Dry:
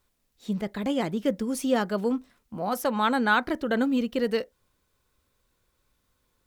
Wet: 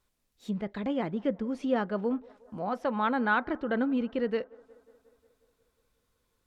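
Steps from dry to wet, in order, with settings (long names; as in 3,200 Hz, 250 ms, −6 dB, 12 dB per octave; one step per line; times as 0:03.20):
treble cut that deepens with the level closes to 2,400 Hz, closed at −25.5 dBFS
on a send: delay with a band-pass on its return 180 ms, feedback 66%, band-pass 730 Hz, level −23 dB
on the sum: level −3.5 dB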